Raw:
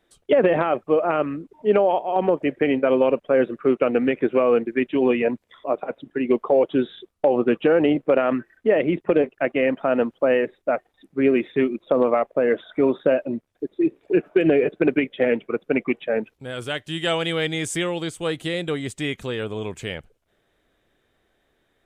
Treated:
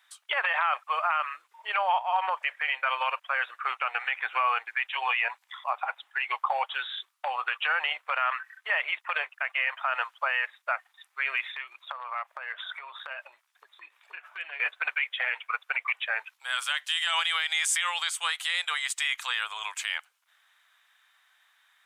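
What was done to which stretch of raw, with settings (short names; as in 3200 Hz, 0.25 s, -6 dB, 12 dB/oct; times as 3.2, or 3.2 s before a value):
1.78–2.35 tilt shelf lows +3 dB, about 1400 Hz
3.47–6.74 bell 800 Hz +8 dB 0.24 oct
11.49–14.6 compressor 8:1, threshold -27 dBFS
whole clip: steep high-pass 960 Hz 36 dB/oct; limiter -23.5 dBFS; gain +7.5 dB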